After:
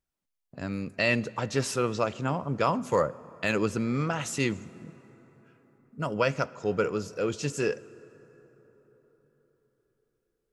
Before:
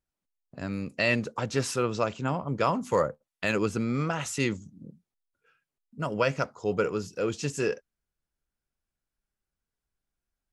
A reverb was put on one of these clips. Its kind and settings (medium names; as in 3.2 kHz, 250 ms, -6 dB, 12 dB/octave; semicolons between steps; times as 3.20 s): plate-style reverb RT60 4.7 s, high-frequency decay 0.45×, DRR 19 dB